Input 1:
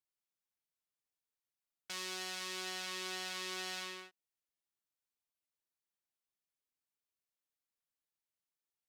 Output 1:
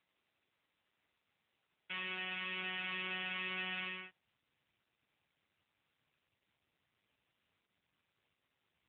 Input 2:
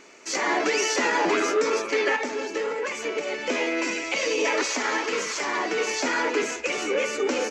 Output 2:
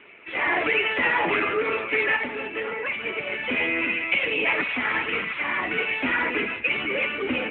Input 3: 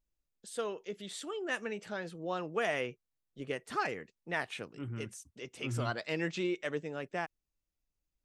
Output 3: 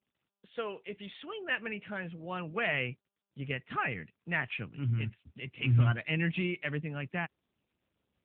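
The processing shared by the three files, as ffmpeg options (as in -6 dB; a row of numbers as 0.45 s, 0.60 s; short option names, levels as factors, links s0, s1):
-af "asubboost=boost=9:cutoff=140,lowpass=f=2600:t=q:w=2.4" -ar 8000 -c:a libopencore_amrnb -b:a 10200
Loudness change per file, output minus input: +1.0 LU, +1.0 LU, +4.0 LU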